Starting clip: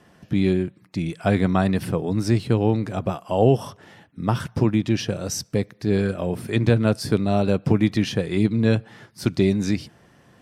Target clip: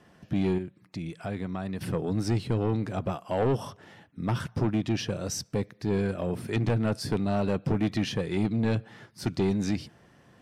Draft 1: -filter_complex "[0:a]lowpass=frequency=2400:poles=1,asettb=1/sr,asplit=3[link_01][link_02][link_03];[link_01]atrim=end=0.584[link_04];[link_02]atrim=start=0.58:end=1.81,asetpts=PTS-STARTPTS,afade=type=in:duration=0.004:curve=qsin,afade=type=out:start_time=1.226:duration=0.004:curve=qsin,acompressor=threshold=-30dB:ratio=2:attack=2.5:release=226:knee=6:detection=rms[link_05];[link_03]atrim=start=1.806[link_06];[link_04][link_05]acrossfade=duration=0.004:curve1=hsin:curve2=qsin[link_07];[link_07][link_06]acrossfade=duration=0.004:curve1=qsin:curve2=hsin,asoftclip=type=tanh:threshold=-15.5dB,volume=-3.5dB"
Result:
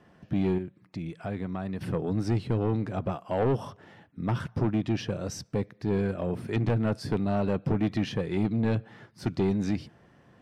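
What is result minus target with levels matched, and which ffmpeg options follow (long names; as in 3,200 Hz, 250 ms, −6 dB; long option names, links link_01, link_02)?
8,000 Hz band −7.0 dB
-filter_complex "[0:a]lowpass=frequency=9100:poles=1,asettb=1/sr,asplit=3[link_01][link_02][link_03];[link_01]atrim=end=0.584[link_04];[link_02]atrim=start=0.58:end=1.81,asetpts=PTS-STARTPTS,afade=type=in:duration=0.004:curve=qsin,afade=type=out:start_time=1.226:duration=0.004:curve=qsin,acompressor=threshold=-30dB:ratio=2:attack=2.5:release=226:knee=6:detection=rms[link_05];[link_03]atrim=start=1.806[link_06];[link_04][link_05]acrossfade=duration=0.004:curve1=hsin:curve2=qsin[link_07];[link_07][link_06]acrossfade=duration=0.004:curve1=qsin:curve2=hsin,asoftclip=type=tanh:threshold=-15.5dB,volume=-3.5dB"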